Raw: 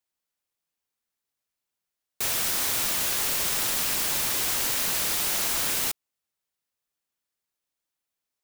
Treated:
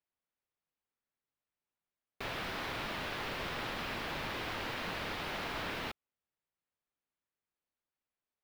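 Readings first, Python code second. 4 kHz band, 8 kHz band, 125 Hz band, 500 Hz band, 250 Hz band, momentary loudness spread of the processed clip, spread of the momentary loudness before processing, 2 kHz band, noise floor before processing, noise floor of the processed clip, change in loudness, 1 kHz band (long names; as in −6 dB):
−12.0 dB, −29.0 dB, −2.0 dB, −3.0 dB, −2.5 dB, 3 LU, 3 LU, −6.0 dB, below −85 dBFS, below −85 dBFS, −14.5 dB, −4.0 dB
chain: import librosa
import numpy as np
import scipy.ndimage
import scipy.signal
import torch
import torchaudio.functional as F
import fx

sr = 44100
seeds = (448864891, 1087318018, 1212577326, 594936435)

y = fx.air_absorb(x, sr, metres=370.0)
y = F.gain(torch.from_numpy(y), -2.0).numpy()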